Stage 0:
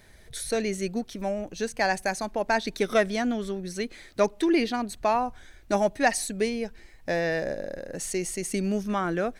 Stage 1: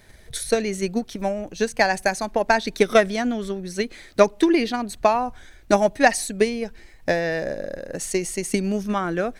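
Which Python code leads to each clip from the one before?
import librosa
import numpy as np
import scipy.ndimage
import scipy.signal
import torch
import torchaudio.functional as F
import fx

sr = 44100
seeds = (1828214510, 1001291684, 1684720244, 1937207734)

y = fx.transient(x, sr, attack_db=7, sustain_db=2)
y = F.gain(torch.from_numpy(y), 2.0).numpy()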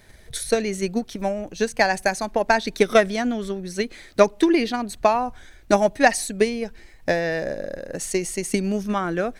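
y = x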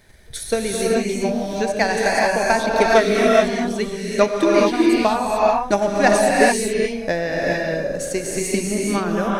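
y = fx.rev_gated(x, sr, seeds[0], gate_ms=460, shape='rising', drr_db=-3.5)
y = F.gain(torch.from_numpy(y), -1.0).numpy()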